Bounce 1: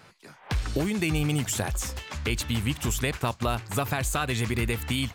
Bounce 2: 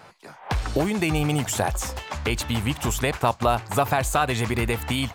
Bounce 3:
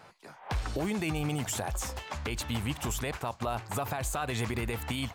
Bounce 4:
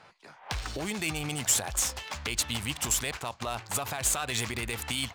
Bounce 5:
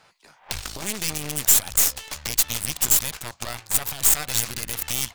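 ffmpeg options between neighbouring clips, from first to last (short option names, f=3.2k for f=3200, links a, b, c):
-af "equalizer=f=770:w=0.99:g=9,volume=1.5dB"
-af "alimiter=limit=-16.5dB:level=0:latency=1:release=43,volume=-6dB"
-af "crystalizer=i=7:c=0,adynamicsmooth=sensitivity=5:basefreq=2.8k,volume=-4dB"
-af "aeval=exprs='0.266*(cos(1*acos(clip(val(0)/0.266,-1,1)))-cos(1*PI/2))+0.075*(cos(8*acos(clip(val(0)/0.266,-1,1)))-cos(8*PI/2))':c=same,crystalizer=i=2.5:c=0,volume=-3.5dB"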